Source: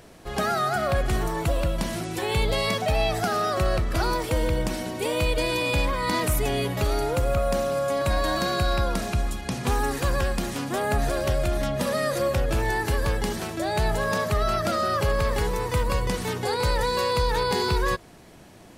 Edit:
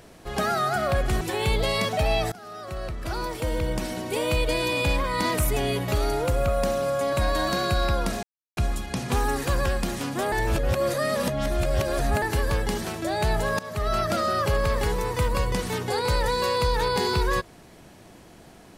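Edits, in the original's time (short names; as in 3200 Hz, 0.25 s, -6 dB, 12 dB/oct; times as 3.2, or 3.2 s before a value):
1.21–2.1 cut
3.21–4.94 fade in linear, from -22 dB
9.12 insert silence 0.34 s
10.87–12.77 reverse
14.14–14.5 fade in, from -18.5 dB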